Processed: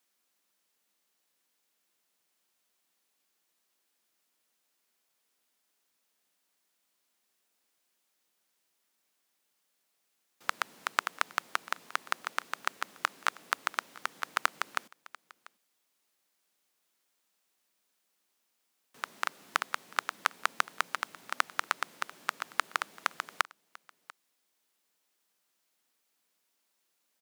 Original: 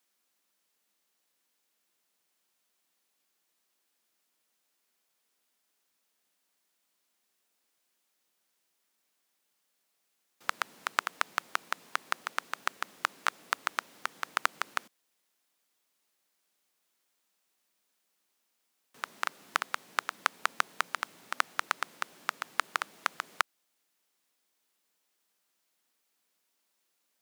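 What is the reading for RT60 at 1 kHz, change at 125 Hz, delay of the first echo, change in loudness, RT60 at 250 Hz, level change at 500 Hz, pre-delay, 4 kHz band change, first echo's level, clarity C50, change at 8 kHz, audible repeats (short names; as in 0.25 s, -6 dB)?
none, n/a, 0.692 s, 0.0 dB, none, 0.0 dB, none, 0.0 dB, -21.5 dB, none, 0.0 dB, 1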